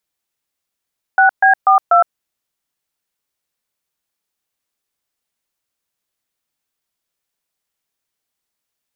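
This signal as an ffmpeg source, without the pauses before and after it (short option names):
-f lavfi -i "aevalsrc='0.335*clip(min(mod(t,0.244),0.113-mod(t,0.244))/0.002,0,1)*(eq(floor(t/0.244),0)*(sin(2*PI*770*mod(t,0.244))+sin(2*PI*1477*mod(t,0.244)))+eq(floor(t/0.244),1)*(sin(2*PI*770*mod(t,0.244))+sin(2*PI*1633*mod(t,0.244)))+eq(floor(t/0.244),2)*(sin(2*PI*770*mod(t,0.244))+sin(2*PI*1209*mod(t,0.244)))+eq(floor(t/0.244),3)*(sin(2*PI*697*mod(t,0.244))+sin(2*PI*1336*mod(t,0.244))))':d=0.976:s=44100"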